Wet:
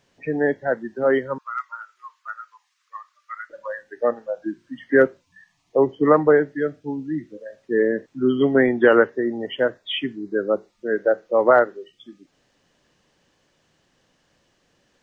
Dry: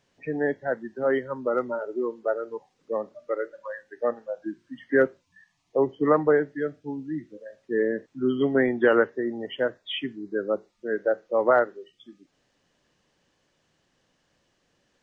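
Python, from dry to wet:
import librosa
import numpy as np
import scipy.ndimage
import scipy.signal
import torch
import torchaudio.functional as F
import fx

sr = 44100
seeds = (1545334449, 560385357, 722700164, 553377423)

y = fx.cheby1_highpass(x, sr, hz=1100.0, order=5, at=(1.38, 3.5))
y = y * 10.0 ** (5.0 / 20.0)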